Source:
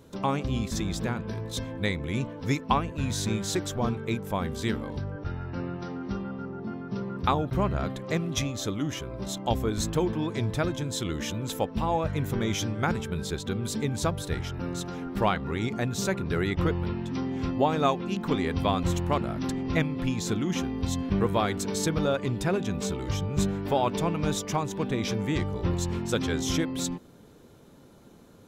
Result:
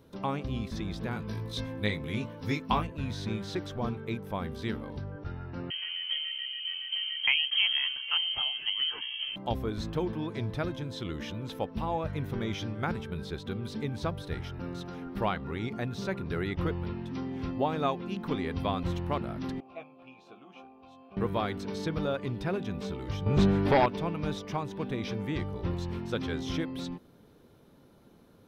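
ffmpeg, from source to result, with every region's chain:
-filter_complex "[0:a]asettb=1/sr,asplit=3[s0][s1][s2];[s0]atrim=end=1.114[s3];[s1]atrim=start=1.11:end=2.87,asetpts=PTS-STARTPTS,afade=t=in:d=0.004:c=qsin,afade=t=out:st=1.756:d=0.004:c=qsin,highshelf=f=4800:g=11.5,asplit=2[s4][s5];[s5]adelay=19,volume=0.596[s6];[s4][s6]amix=inputs=2:normalize=0,atrim=end_sample=77616[s7];[s2]atrim=start=2.866[s8];[s3][s7]acrossfade=d=0.004:c1=hsin:c2=qsin[s9];[s9][s8]acrossfade=d=0.004:c1=qsin:c2=hsin,asettb=1/sr,asplit=3[s10][s11][s12];[s10]atrim=end=5.704[s13];[s11]atrim=start=5.7:end=9.36,asetpts=PTS-STARTPTS,afade=t=in:d=0.004:c=qsin,afade=t=out:st=3.656:d=0.004:c=qsin,lowpass=f=2800:t=q:w=0.5098,lowpass=f=2800:t=q:w=0.6013,lowpass=f=2800:t=q:w=0.9,lowpass=f=2800:t=q:w=2.563,afreqshift=-3300,highshelf=f=2400:g=7.5[s14];[s12]atrim=start=9.356[s15];[s13][s14]acrossfade=d=0.004:c1=hsin:c2=qsin[s16];[s16][s15]acrossfade=d=0.004:c1=qsin:c2=hsin,asettb=1/sr,asplit=3[s17][s18][s19];[s17]atrim=end=19.604[s20];[s18]atrim=start=19.6:end=21.17,asetpts=PTS-STARTPTS,afade=t=in:d=0.004:c=qsin,afade=t=out:st=1.566:d=0.004:c=qsin,asplit=3[s21][s22][s23];[s21]bandpass=f=730:t=q:w=8,volume=1[s24];[s22]bandpass=f=1090:t=q:w=8,volume=0.501[s25];[s23]bandpass=f=2440:t=q:w=8,volume=0.355[s26];[s24][s25][s26]amix=inputs=3:normalize=0,asplit=2[s27][s28];[s28]adelay=15,volume=0.531[s29];[s27][s29]amix=inputs=2:normalize=0,atrim=end_sample=69237[s30];[s19]atrim=start=21.166[s31];[s20][s30]acrossfade=d=0.004:c1=hsin:c2=qsin[s32];[s32][s31]acrossfade=d=0.004:c1=qsin:c2=hsin,asettb=1/sr,asplit=3[s33][s34][s35];[s33]atrim=end=23.264[s36];[s34]atrim=start=23.26:end=23.86,asetpts=PTS-STARTPTS,afade=t=in:d=0.004:c=qsin,afade=t=out:st=0.596:d=0.004:c=qsin,lowpass=f=11000:w=0.5412,lowpass=f=11000:w=1.3066,aeval=exprs='0.251*sin(PI/2*2.24*val(0)/0.251)':c=same[s37];[s35]atrim=start=23.856[s38];[s36][s37]acrossfade=d=0.004:c1=hsin:c2=qsin[s39];[s39][s38]acrossfade=d=0.004:c1=qsin:c2=hsin,acrossover=split=5500[s40][s41];[s41]acompressor=threshold=0.00282:ratio=4:attack=1:release=60[s42];[s40][s42]amix=inputs=2:normalize=0,equalizer=f=7200:t=o:w=0.41:g=-11,volume=0.562"

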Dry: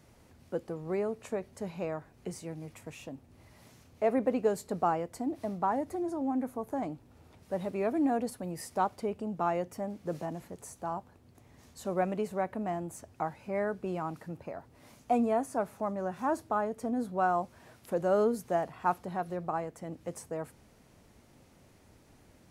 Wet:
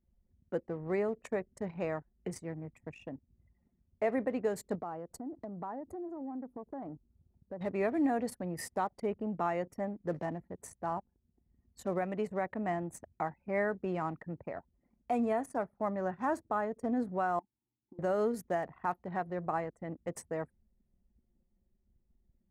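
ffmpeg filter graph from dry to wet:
-filter_complex "[0:a]asettb=1/sr,asplit=3[s0][s1][s2];[s0]atrim=end=4.754[s3];[s1]atrim=start=4.75:end=7.61,asetpts=PTS-STARTPTS,afade=t=in:d=0.004:c=qsin,afade=t=out:st=2.856:d=0.004:c=qsin,equalizer=f=2200:t=o:w=0.74:g=-11,acompressor=threshold=0.01:ratio=3:attack=3.2:release=140:knee=1:detection=peak[s4];[s2]atrim=start=7.606[s5];[s3][s4]acrossfade=d=0.004:c1=hsin:c2=qsin[s6];[s6][s5]acrossfade=d=0.004:c1=qsin:c2=hsin,asettb=1/sr,asplit=3[s7][s8][s9];[s7]atrim=end=17.394[s10];[s8]atrim=start=17.39:end=17.99,asetpts=PTS-STARTPTS,afade=t=in:d=0.004:c=qsin,afade=t=out:st=0.596:d=0.004:c=qsin,lowshelf=f=110:g=11,acompressor=threshold=0.0224:ratio=5:attack=3.2:release=140:knee=1:detection=peak,asplit=3[s11][s12][s13];[s11]bandpass=f=300:t=q:w=8,volume=1[s14];[s12]bandpass=f=870:t=q:w=8,volume=0.501[s15];[s13]bandpass=f=2240:t=q:w=8,volume=0.355[s16];[s14][s15][s16]amix=inputs=3:normalize=0[s17];[s9]atrim=start=17.986[s18];[s10][s17]acrossfade=d=0.004:c1=hsin:c2=qsin[s19];[s19][s18]acrossfade=d=0.004:c1=qsin:c2=hsin,anlmdn=0.0398,equalizer=f=1900:t=o:w=0.34:g=8.5,alimiter=limit=0.0841:level=0:latency=1:release=290"

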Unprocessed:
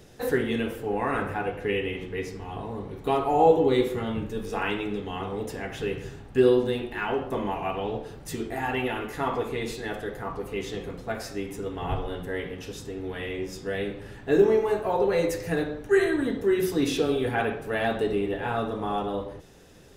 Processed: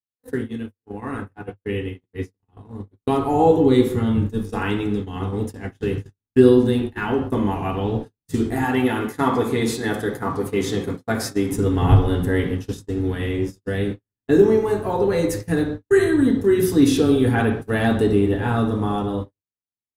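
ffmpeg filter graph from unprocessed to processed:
-filter_complex "[0:a]asettb=1/sr,asplit=3[s0][s1][s2];[s0]atrim=end=8.644[s3];[s1]atrim=start=8.64:end=11.52,asetpts=PTS-STARTPTS,afade=t=in:d=0.004:c=qsin,afade=t=out:st=2.876:d=0.004:c=qsin,highpass=93,lowshelf=f=220:g=-5.5,bandreject=f=2800:w=13[s4];[s2]atrim=start=11.516[s5];[s3][s4]acrossfade=d=0.004:c1=hsin:c2=qsin[s6];[s6][s5]acrossfade=d=0.004:c1=qsin:c2=hsin,dynaudnorm=f=570:g=7:m=5.31,agate=range=0.00112:threshold=0.0562:ratio=16:detection=peak,equalizer=f=100:t=o:w=0.67:g=11,equalizer=f=250:t=o:w=0.67:g=8,equalizer=f=630:t=o:w=0.67:g=-5,equalizer=f=2500:t=o:w=0.67:g=-5,equalizer=f=10000:t=o:w=0.67:g=5,volume=0.708"

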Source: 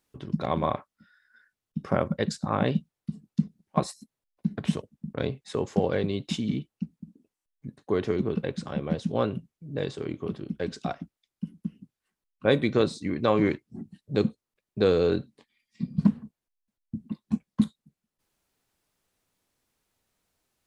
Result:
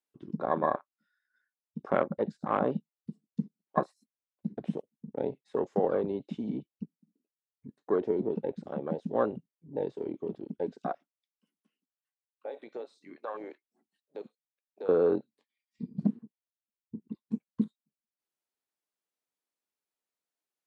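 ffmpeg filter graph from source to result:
-filter_complex "[0:a]asettb=1/sr,asplit=3[s0][s1][s2];[s0]atrim=end=11.014[s3];[s1]atrim=start=11.01:end=14.89,asetpts=PTS-STARTPTS,afade=t=in:d=0.004:c=qsin,afade=t=out:st=3.876:d=0.004:c=qsin,highpass=680,acompressor=threshold=0.02:ratio=3:attack=3.2:release=140:knee=1:detection=peak[s4];[s2]atrim=start=14.886[s5];[s3][s4]acrossfade=d=0.004:c1=hsin:c2=qsin[s6];[s6][s5]acrossfade=d=0.004:c1=qsin:c2=hsin,acrossover=split=3100[s7][s8];[s8]acompressor=threshold=0.00251:ratio=4:attack=1:release=60[s9];[s7][s9]amix=inputs=2:normalize=0,highpass=280,afwtdn=0.0178"

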